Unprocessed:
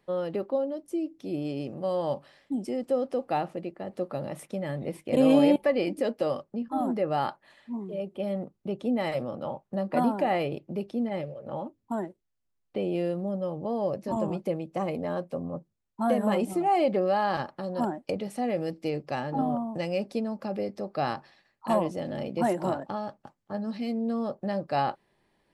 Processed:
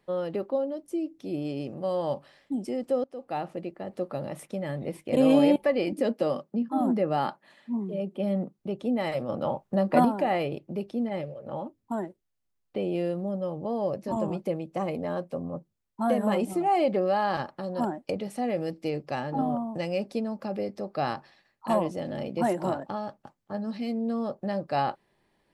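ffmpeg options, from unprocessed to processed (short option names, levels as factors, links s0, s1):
-filter_complex "[0:a]asettb=1/sr,asplit=3[s0][s1][s2];[s0]atrim=end=5.924[s3];[s1]atrim=start=5.92:end=8.59,asetpts=PTS-STARTPTS,afade=t=in:d=0.004:c=qsin,afade=t=out:st=2.666:d=0.004:c=qsin,highpass=f=180:t=q:w=1.8[s4];[s2]atrim=start=8.586[s5];[s3][s4]acrossfade=d=0.004:c1=hsin:c2=qsin[s6];[s6][s5]acrossfade=d=0.004:c1=qsin:c2=hsin,asettb=1/sr,asplit=3[s7][s8][s9];[s7]atrim=end=9.294[s10];[s8]atrim=start=9.29:end=10.05,asetpts=PTS-STARTPTS,afade=t=in:d=0.004:c=qsin,afade=t=out:st=0.756:d=0.004:c=qsin,acontrast=32[s11];[s9]atrim=start=10.046[s12];[s10][s11]acrossfade=d=0.004:c1=hsin:c2=qsin[s13];[s13][s12]acrossfade=d=0.004:c1=qsin:c2=hsin,asplit=2[s14][s15];[s14]atrim=end=3.04,asetpts=PTS-STARTPTS,afade=t=out:st=3.036:d=0.004:c=hsin:silence=0.105925[s16];[s15]atrim=start=3.04,asetpts=PTS-STARTPTS,afade=t=in:d=0.54:silence=0.105925[s17];[s16][s17]concat=n=2:v=0:a=1"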